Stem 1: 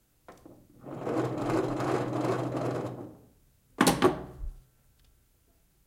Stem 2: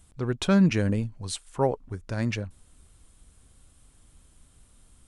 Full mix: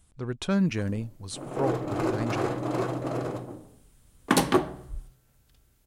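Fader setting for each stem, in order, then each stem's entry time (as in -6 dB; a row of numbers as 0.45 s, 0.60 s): +1.0 dB, -4.5 dB; 0.50 s, 0.00 s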